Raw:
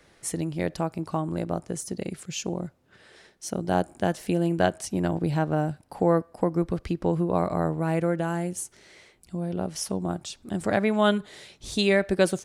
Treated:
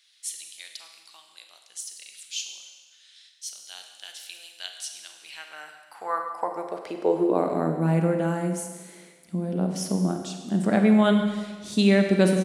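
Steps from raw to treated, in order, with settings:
high-pass filter sweep 3,500 Hz → 190 Hz, 0:05.08–0:07.83
far-end echo of a speakerphone 140 ms, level −20 dB
four-comb reverb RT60 1.4 s, combs from 33 ms, DRR 4.5 dB
level −2 dB

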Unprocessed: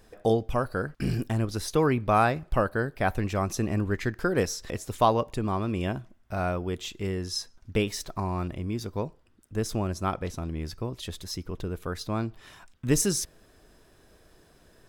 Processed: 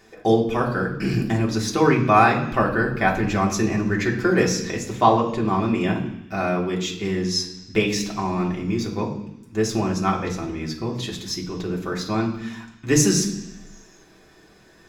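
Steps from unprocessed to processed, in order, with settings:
0:04.92–0:05.46: high-shelf EQ 4,200 Hz −9.5 dB
convolution reverb RT60 0.85 s, pre-delay 3 ms, DRR −1.5 dB
level −1 dB

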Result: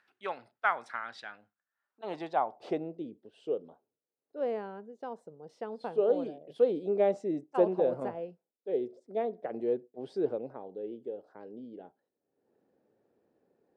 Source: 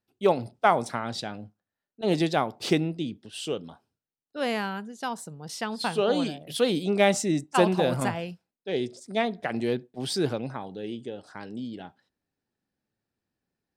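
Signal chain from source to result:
upward compression, threshold −45 dBFS
band-pass filter sweep 1,600 Hz → 470 Hz, 0:01.58–0:03.06

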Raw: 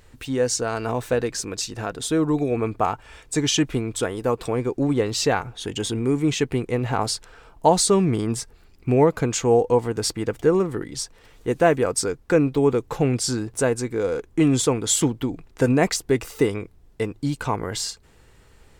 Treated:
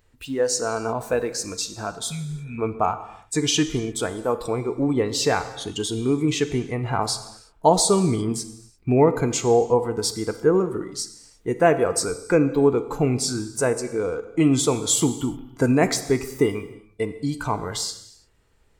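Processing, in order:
noise reduction from a noise print of the clip's start 11 dB
healed spectral selection 0:02.07–0:02.56, 240–1,900 Hz before
reverb whose tail is shaped and stops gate 370 ms falling, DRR 10 dB

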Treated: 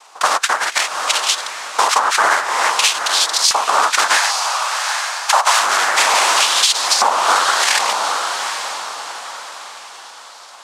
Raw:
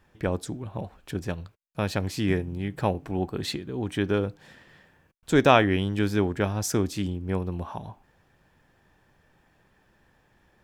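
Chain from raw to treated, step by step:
0:01.97–0:02.79: expanding power law on the bin magnitudes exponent 3.9
in parallel at −11 dB: fuzz pedal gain 33 dB, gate −38 dBFS
on the sum: cochlear-implant simulation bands 2
auto-filter high-pass saw up 0.57 Hz 930–4,800 Hz
feedback delay with all-pass diffusion 807 ms, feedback 40%, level −11 dB
downward compressor 8 to 1, threshold −28 dBFS, peak gain reduction 16.5 dB
0:04.17–0:05.61: high-pass filter 580 Hz 24 dB per octave
boost into a limiter +19 dB
level −1 dB

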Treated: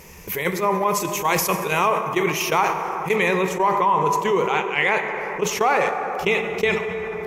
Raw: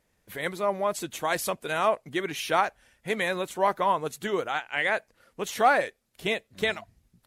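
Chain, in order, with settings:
EQ curve with evenly spaced ripples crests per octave 0.78, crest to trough 10 dB
dense smooth reverb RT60 2.8 s, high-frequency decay 0.4×, DRR 7 dB
noise gate −27 dBFS, range −14 dB
high-shelf EQ 9,800 Hz +6.5 dB, from 0:03.16 −7 dB
envelope flattener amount 70%

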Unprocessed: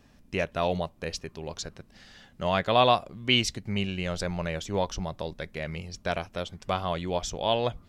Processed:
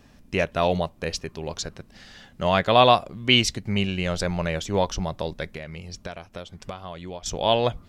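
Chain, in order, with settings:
0:05.48–0:07.26: downward compressor 8 to 1, threshold −38 dBFS, peak gain reduction 15.5 dB
level +5 dB

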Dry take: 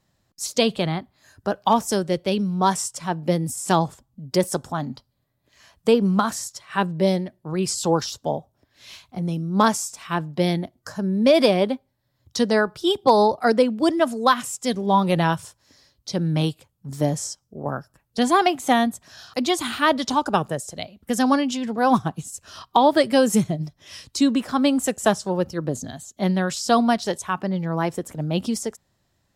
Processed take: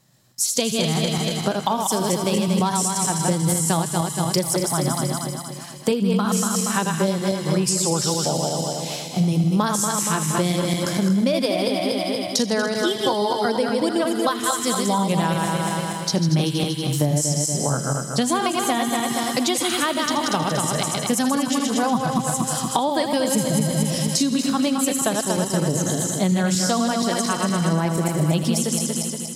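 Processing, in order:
feedback delay that plays each chunk backwards 118 ms, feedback 70%, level −4 dB
parametric band 11,000 Hz +9.5 dB 1.9 octaves
on a send: delay with a high-pass on its return 79 ms, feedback 82%, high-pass 1,800 Hz, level −12 dB
on the sum: downward compressor 6 to 1, threshold −24 dBFS, peak gain reduction 14.5 dB
low shelf with overshoot 100 Hz −8 dB, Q 3
level +5 dB

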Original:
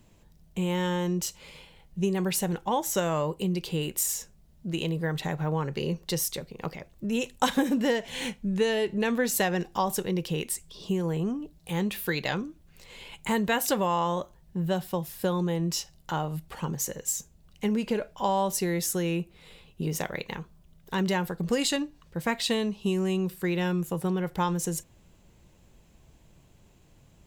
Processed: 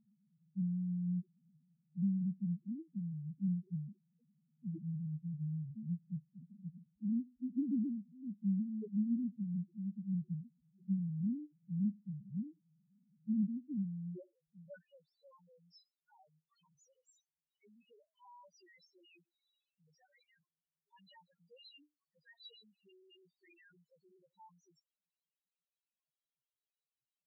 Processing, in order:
head-to-tape spacing loss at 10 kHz 28 dB
band-pass filter sweep 210 Hz → 4,600 Hz, 0:14.06–0:15.09
spectral peaks only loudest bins 1
level +1 dB

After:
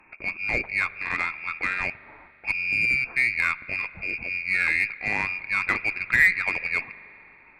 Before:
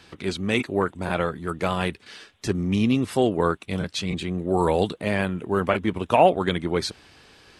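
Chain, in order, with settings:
voice inversion scrambler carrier 2,600 Hz
harmonic generator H 7 −42 dB, 8 −30 dB, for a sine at −4.5 dBFS
spring reverb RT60 2.9 s, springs 41 ms, chirp 20 ms, DRR 17 dB
level −2.5 dB

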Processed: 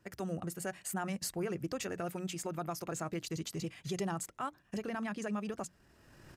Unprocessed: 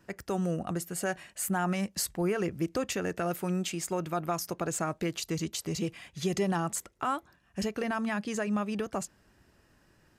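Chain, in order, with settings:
camcorder AGC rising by 14 dB per second
mains-hum notches 60/120/180/240/300 Hz
tempo change 1.6×
parametric band 120 Hz +4 dB 0.77 octaves
level −6.5 dB

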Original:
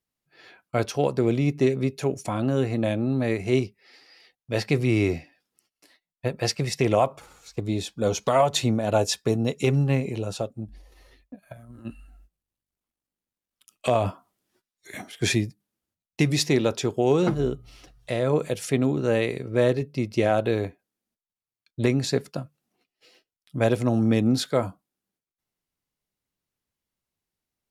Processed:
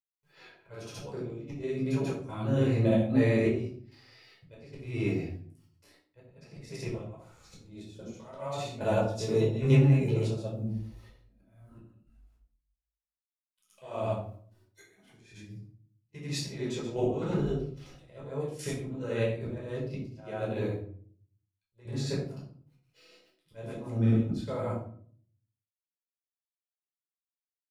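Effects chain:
bit-depth reduction 12 bits, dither none
granular cloud 181 ms, spray 100 ms, pitch spread up and down by 0 semitones
volume swells 591 ms
gate pattern "xxxxxx..xx" 184 BPM −12 dB
rectangular room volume 590 cubic metres, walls furnished, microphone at 4.9 metres
level −5 dB

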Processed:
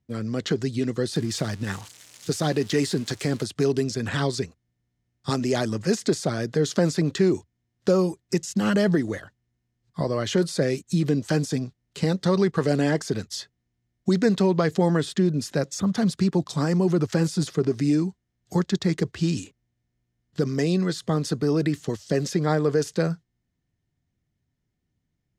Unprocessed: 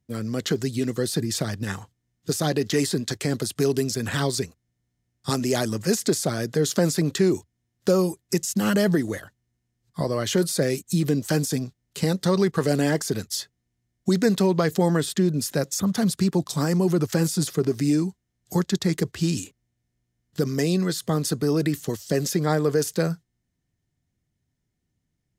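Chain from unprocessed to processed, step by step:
0:01.15–0:03.44: spike at every zero crossing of −26 dBFS
high-frequency loss of the air 71 metres

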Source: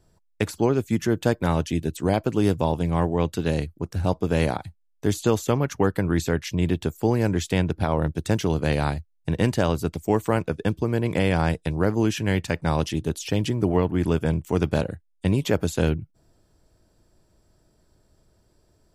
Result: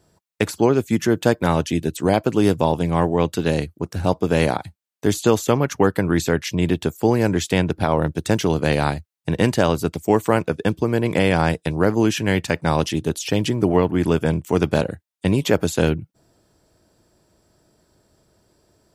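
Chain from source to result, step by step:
high-pass filter 150 Hz 6 dB per octave
level +5.5 dB

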